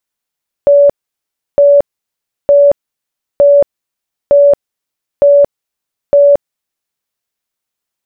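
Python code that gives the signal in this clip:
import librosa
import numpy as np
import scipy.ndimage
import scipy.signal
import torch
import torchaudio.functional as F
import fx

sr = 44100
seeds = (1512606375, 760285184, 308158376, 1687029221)

y = fx.tone_burst(sr, hz=571.0, cycles=129, every_s=0.91, bursts=7, level_db=-2.5)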